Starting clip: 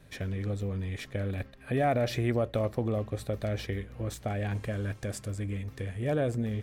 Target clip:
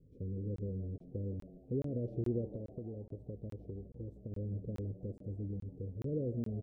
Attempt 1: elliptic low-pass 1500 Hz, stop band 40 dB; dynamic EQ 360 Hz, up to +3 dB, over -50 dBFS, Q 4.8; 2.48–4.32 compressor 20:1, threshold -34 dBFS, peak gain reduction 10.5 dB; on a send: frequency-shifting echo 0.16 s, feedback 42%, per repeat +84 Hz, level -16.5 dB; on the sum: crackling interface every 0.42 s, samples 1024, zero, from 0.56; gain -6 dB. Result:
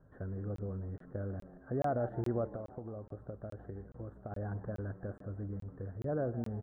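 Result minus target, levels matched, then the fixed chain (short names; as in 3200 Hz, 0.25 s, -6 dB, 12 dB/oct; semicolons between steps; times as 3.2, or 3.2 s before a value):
2000 Hz band +18.0 dB
elliptic low-pass 490 Hz, stop band 40 dB; dynamic EQ 360 Hz, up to +3 dB, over -50 dBFS, Q 4.8; 2.48–4.32 compressor 20:1, threshold -34 dBFS, peak gain reduction 9 dB; on a send: frequency-shifting echo 0.16 s, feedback 42%, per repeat +84 Hz, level -16.5 dB; on the sum: crackling interface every 0.42 s, samples 1024, zero, from 0.56; gain -6 dB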